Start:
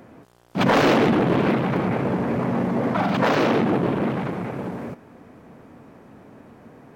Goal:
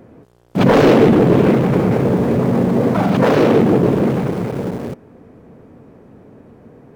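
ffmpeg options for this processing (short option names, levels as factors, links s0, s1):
-filter_complex "[0:a]lowshelf=f=240:g=11,asplit=2[s0][s1];[s1]aeval=exprs='val(0)*gte(abs(val(0)),0.0631)':c=same,volume=0.631[s2];[s0][s2]amix=inputs=2:normalize=0,equalizer=f=450:w=1.8:g=7,volume=0.668"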